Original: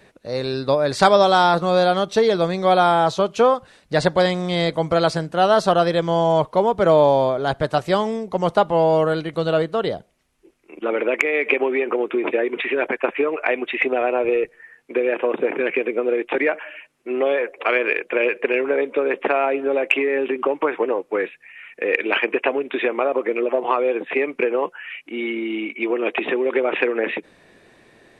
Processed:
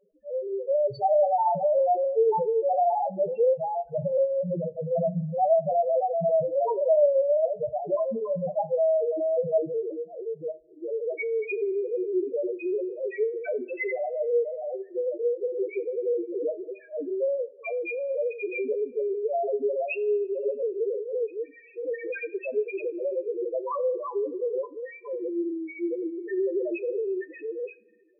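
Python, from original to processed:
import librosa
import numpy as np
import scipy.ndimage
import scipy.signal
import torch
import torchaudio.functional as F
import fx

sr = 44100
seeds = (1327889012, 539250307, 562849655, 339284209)

y = fx.reverse_delay(x, sr, ms=478, wet_db=-3.5)
y = fx.spec_topn(y, sr, count=1)
y = fx.rev_double_slope(y, sr, seeds[0], early_s=0.28, late_s=1.5, knee_db=-22, drr_db=11.5)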